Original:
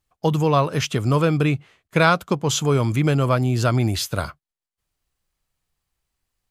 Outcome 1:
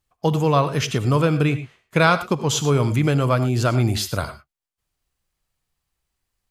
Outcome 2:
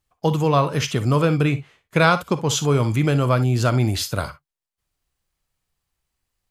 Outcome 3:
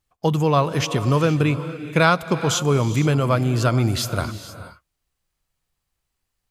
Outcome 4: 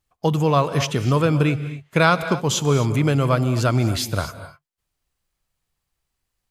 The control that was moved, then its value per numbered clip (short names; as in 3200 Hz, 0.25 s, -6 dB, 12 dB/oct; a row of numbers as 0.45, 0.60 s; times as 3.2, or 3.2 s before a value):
non-linear reverb, gate: 130, 80, 500, 280 ms